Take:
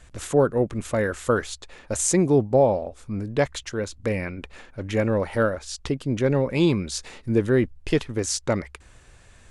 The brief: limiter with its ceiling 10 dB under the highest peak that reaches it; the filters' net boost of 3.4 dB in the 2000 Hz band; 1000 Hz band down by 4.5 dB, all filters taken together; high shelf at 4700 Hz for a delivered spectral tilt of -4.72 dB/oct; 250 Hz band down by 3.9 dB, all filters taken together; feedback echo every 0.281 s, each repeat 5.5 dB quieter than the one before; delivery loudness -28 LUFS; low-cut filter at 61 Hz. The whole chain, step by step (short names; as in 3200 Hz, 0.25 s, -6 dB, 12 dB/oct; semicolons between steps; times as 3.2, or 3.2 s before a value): HPF 61 Hz; bell 250 Hz -5 dB; bell 1000 Hz -9 dB; bell 2000 Hz +8.5 dB; high shelf 4700 Hz -5.5 dB; limiter -19 dBFS; feedback echo 0.281 s, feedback 53%, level -5.5 dB; gain +1.5 dB